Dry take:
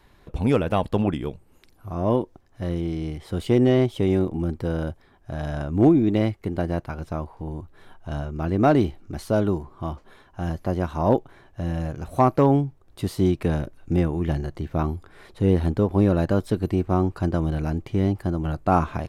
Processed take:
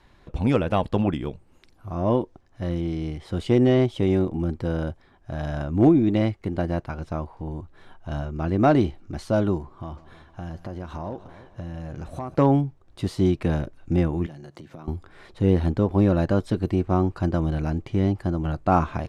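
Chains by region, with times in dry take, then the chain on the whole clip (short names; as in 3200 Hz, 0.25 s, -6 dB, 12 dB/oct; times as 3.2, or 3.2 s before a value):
9.75–12.35 compressor 5:1, threshold -30 dBFS + multi-head echo 0.152 s, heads first and second, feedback 41%, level -18 dB
14.26–14.88 HPF 120 Hz 24 dB/oct + compressor 10:1, threshold -37 dBFS + high shelf 5000 Hz +8.5 dB
whole clip: LPF 7800 Hz 12 dB/oct; notch 430 Hz, Q 14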